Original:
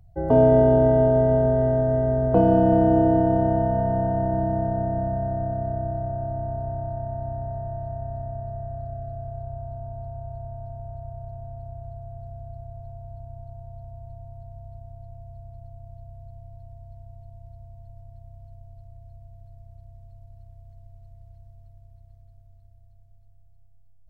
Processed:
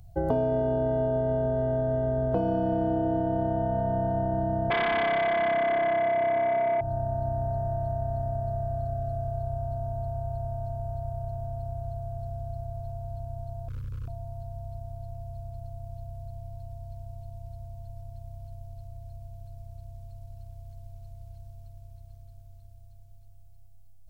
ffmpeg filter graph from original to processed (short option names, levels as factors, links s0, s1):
-filter_complex "[0:a]asettb=1/sr,asplit=3[s0][s1][s2];[s0]atrim=end=4.704[s3];[s1]atrim=start=4.7:end=6.81,asetpts=PTS-STARTPTS,afade=t=in:d=0.004:c=qsin,afade=t=out:st=2.106:d=0.004:c=qsin,highpass=160,acrossover=split=230 2500:gain=0.0891 1 0.158[s4][s5][s6];[s4][s5][s6]amix=inputs=3:normalize=0,aeval=exprs='0.119*sin(PI/2*3.16*val(0)/0.119)':c=same[s7];[s2]atrim=start=6.806[s8];[s3][s7]acrossfade=d=0.004:c1=hsin:c2=qsin[s9];[s9][s8]acrossfade=d=0.004:c1=qsin:c2=hsin,asettb=1/sr,asplit=3[s10][s11][s12];[s10]atrim=end=13.684[s13];[s11]atrim=start=13.68:end=14.08,asetpts=PTS-STARTPTS,afade=t=in:d=0.004:c=qsin,afade=t=out:st=0.396:d=0.004:c=qsin,aecho=1:1:1.6:0.47,atrim=end_sample=17640,asoftclip=type=hard:threshold=0.0237,asuperstop=centerf=720:order=8:qfactor=1.5[s14];[s12]atrim=start=14.076[s15];[s13][s14]acrossfade=d=0.004:c1=hsin:c2=qsin[s16];[s16][s15]acrossfade=d=0.004:c1=qsin:c2=hsin,highshelf=f=2500:g=10.5,bandreject=f=1900:w=7.3,acompressor=threshold=0.0447:ratio=6,volume=1.41"